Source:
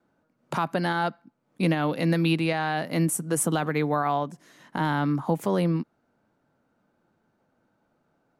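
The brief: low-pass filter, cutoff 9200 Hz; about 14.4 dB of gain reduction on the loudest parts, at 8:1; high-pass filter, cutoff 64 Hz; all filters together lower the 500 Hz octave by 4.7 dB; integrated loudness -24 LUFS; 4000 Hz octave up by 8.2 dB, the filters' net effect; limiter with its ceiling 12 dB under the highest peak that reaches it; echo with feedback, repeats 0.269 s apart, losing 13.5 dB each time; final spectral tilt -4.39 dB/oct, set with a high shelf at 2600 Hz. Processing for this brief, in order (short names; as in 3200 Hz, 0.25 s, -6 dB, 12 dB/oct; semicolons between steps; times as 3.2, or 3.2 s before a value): HPF 64 Hz; LPF 9200 Hz; bell 500 Hz -6.5 dB; high shelf 2600 Hz +3 dB; bell 4000 Hz +8 dB; compressor 8:1, threshold -35 dBFS; limiter -29 dBFS; feedback echo 0.269 s, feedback 21%, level -13.5 dB; gain +16.5 dB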